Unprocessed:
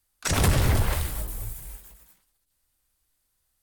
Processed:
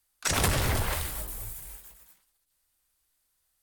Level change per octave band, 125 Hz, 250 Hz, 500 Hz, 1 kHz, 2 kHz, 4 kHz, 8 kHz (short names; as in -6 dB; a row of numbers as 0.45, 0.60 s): -7.0, -5.5, -2.5, -1.0, -0.5, 0.0, 0.0 dB